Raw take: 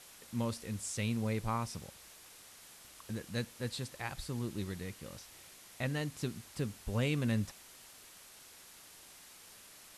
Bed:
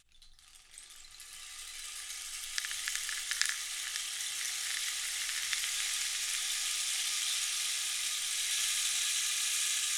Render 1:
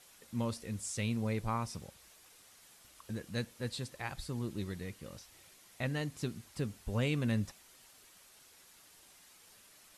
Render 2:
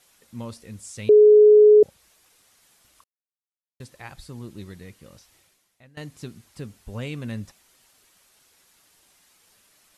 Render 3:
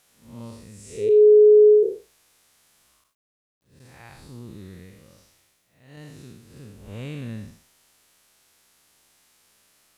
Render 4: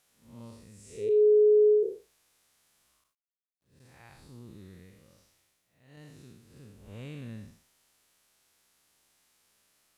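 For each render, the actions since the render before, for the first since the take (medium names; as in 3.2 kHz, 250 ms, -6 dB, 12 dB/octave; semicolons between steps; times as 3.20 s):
noise reduction 6 dB, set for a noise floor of -56 dBFS
1.09–1.83 s: bleep 422 Hz -8.5 dBFS; 3.04–3.80 s: mute; 5.35–5.97 s: fade out quadratic, to -20 dB
spectral blur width 193 ms; word length cut 12-bit, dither none
trim -8 dB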